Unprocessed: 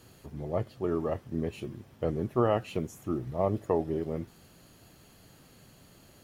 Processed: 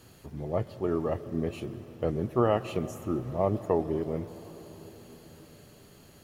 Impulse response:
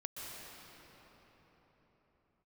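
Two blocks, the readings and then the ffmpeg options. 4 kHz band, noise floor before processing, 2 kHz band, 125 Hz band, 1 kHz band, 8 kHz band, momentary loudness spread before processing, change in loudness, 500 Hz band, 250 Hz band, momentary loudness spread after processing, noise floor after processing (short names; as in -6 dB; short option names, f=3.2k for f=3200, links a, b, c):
+1.5 dB, -57 dBFS, +1.5 dB, +1.5 dB, +1.5 dB, +1.5 dB, 13 LU, +1.5 dB, +1.5 dB, +1.5 dB, 20 LU, -55 dBFS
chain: -filter_complex "[0:a]asplit=2[a][b];[1:a]atrim=start_sample=2205[c];[b][c]afir=irnorm=-1:irlink=0,volume=-11.5dB[d];[a][d]amix=inputs=2:normalize=0"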